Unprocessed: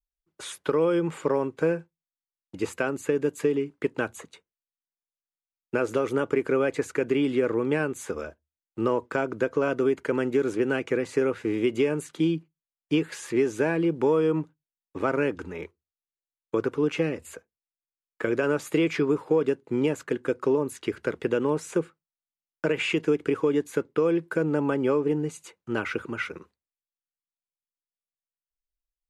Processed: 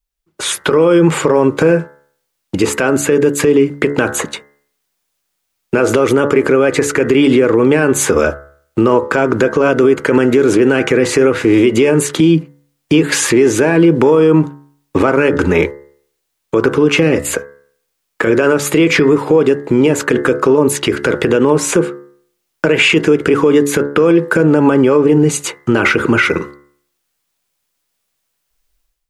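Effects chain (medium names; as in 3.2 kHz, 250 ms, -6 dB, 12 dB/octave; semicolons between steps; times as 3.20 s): compression, threshold -26 dBFS, peak gain reduction 8 dB; de-hum 71.49 Hz, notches 29; level rider gain up to 14 dB; loudness maximiser +12.5 dB; trim -1 dB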